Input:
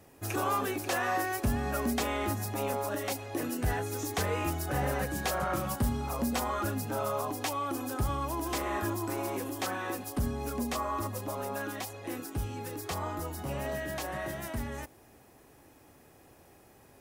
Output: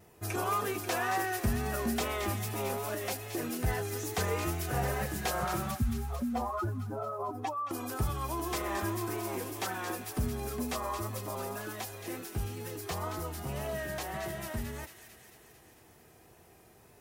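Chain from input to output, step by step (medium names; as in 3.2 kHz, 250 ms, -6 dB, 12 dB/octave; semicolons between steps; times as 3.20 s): 5.71–7.71 s: spectral contrast enhancement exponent 2.2; wow and flutter 51 cents; comb of notches 280 Hz; on a send: feedback echo behind a high-pass 223 ms, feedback 67%, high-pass 2.2 kHz, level -7 dB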